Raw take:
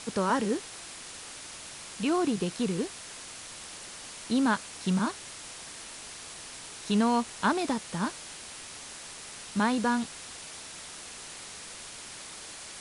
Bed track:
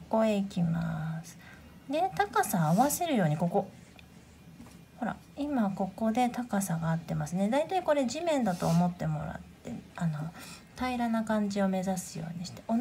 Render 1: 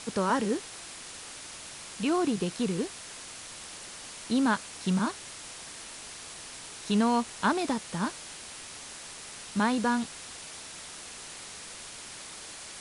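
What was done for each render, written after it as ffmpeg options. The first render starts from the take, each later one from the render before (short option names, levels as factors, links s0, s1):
-af anull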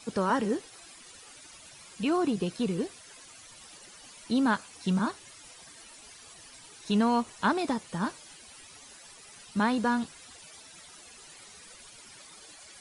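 -af "afftdn=nr=13:nf=-44"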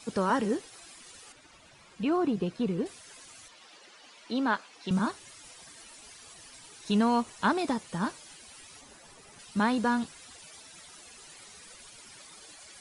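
-filter_complex "[0:a]asettb=1/sr,asplit=3[s0][s1][s2];[s0]atrim=end=1.324[s3];[s1]atrim=start=1.32:end=2.86,asetpts=PTS-STARTPTS,afade=t=in:d=0.004:c=qsin,afade=t=out:st=1.536:d=0.004:c=qsin,aemphasis=mode=reproduction:type=75kf[s4];[s2]atrim=start=2.856[s5];[s3][s4]acrossfade=d=0.004:c1=hsin:c2=qsin[s6];[s6][s5]acrossfade=d=0.004:c1=qsin:c2=hsin,asettb=1/sr,asplit=3[s7][s8][s9];[s7]atrim=end=3.484[s10];[s8]atrim=start=3.48:end=4.91,asetpts=PTS-STARTPTS,afade=t=in:d=0.004:c=qsin,afade=t=out:st=1.426:d=0.004:c=qsin,acrossover=split=250 5400:gain=0.141 1 0.158[s11][s12][s13];[s11][s12][s13]amix=inputs=3:normalize=0[s14];[s9]atrim=start=4.906[s15];[s10][s14]acrossfade=d=0.004:c1=hsin:c2=qsin[s16];[s16][s15]acrossfade=d=0.004:c1=qsin:c2=hsin,asettb=1/sr,asplit=3[s17][s18][s19];[s17]atrim=end=8.814[s20];[s18]atrim=start=8.81:end=9.39,asetpts=PTS-STARTPTS,afade=t=in:d=0.004:c=qsin,afade=t=out:st=0.576:d=0.004:c=qsin,tiltshelf=f=1300:g=5[s21];[s19]atrim=start=9.386[s22];[s20][s21]acrossfade=d=0.004:c1=hsin:c2=qsin[s23];[s23][s22]acrossfade=d=0.004:c1=qsin:c2=hsin"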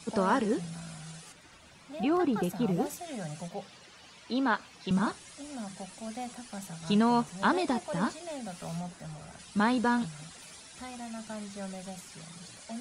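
-filter_complex "[1:a]volume=0.266[s0];[0:a][s0]amix=inputs=2:normalize=0"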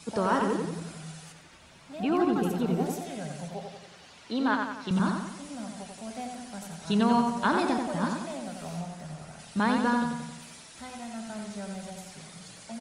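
-filter_complex "[0:a]asplit=2[s0][s1];[s1]adelay=89,lowpass=f=4100:p=1,volume=0.631,asplit=2[s2][s3];[s3]adelay=89,lowpass=f=4100:p=1,volume=0.53,asplit=2[s4][s5];[s5]adelay=89,lowpass=f=4100:p=1,volume=0.53,asplit=2[s6][s7];[s7]adelay=89,lowpass=f=4100:p=1,volume=0.53,asplit=2[s8][s9];[s9]adelay=89,lowpass=f=4100:p=1,volume=0.53,asplit=2[s10][s11];[s11]adelay=89,lowpass=f=4100:p=1,volume=0.53,asplit=2[s12][s13];[s13]adelay=89,lowpass=f=4100:p=1,volume=0.53[s14];[s0][s2][s4][s6][s8][s10][s12][s14]amix=inputs=8:normalize=0"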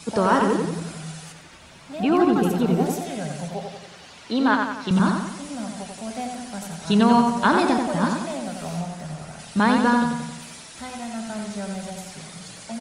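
-af "volume=2.24"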